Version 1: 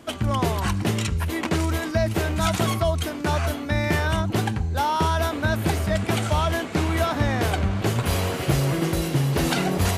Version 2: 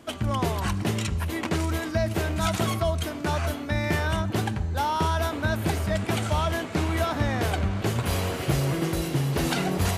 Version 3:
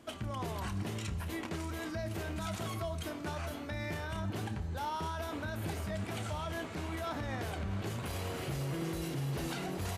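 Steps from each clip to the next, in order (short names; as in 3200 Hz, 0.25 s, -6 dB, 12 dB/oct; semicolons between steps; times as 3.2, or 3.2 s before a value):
reverb RT60 4.3 s, pre-delay 40 ms, DRR 18.5 dB; gain -3 dB
limiter -22 dBFS, peak gain reduction 9 dB; doubler 30 ms -12 dB; echo 0.254 s -20 dB; gain -7.5 dB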